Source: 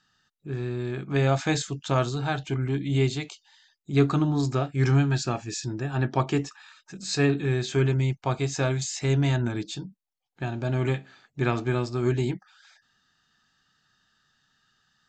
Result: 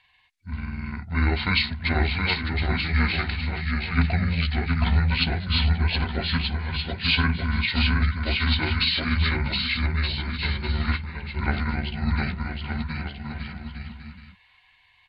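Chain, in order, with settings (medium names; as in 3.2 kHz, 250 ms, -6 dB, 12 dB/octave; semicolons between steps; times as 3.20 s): rotating-head pitch shifter -9 st; ten-band graphic EQ 125 Hz -7 dB, 250 Hz -4 dB, 500 Hz -11 dB, 1 kHz -4 dB, 2 kHz +7 dB, 4 kHz +4 dB; bouncing-ball echo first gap 720 ms, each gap 0.7×, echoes 5; trim +5.5 dB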